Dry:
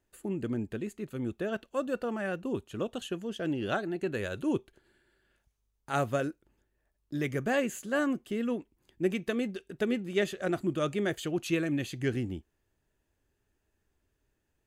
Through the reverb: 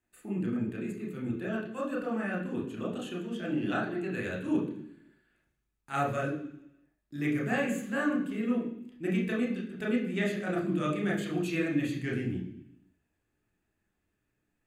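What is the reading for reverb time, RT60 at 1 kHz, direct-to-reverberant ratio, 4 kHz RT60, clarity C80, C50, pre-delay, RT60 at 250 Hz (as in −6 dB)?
0.70 s, 0.70 s, −3.0 dB, 1.0 s, 9.5 dB, 6.0 dB, 28 ms, 0.90 s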